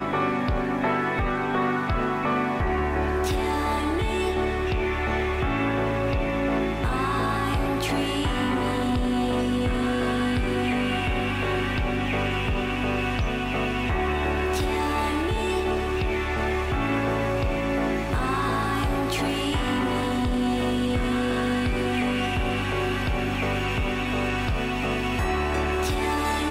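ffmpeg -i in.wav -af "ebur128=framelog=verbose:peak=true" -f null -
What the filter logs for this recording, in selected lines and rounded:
Integrated loudness:
  I:         -25.2 LUFS
  Threshold: -35.2 LUFS
Loudness range:
  LRA:         0.8 LU
  Threshold: -45.2 LUFS
  LRA low:   -25.6 LUFS
  LRA high:  -24.8 LUFS
True peak:
  Peak:      -14.3 dBFS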